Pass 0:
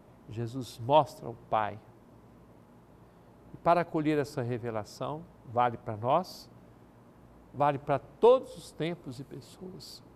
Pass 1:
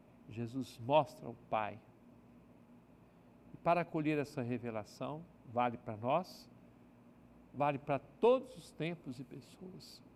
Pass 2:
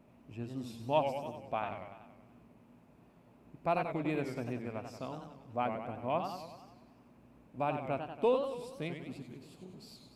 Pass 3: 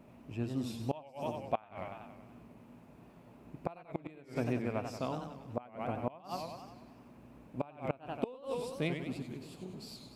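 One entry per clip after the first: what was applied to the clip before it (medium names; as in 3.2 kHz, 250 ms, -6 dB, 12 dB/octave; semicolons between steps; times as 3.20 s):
graphic EQ with 31 bands 160 Hz +4 dB, 250 Hz +9 dB, 630 Hz +3 dB, 2.5 kHz +11 dB; trim -9 dB
modulated delay 95 ms, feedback 59%, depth 181 cents, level -7 dB
inverted gate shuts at -24 dBFS, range -25 dB; trim +5 dB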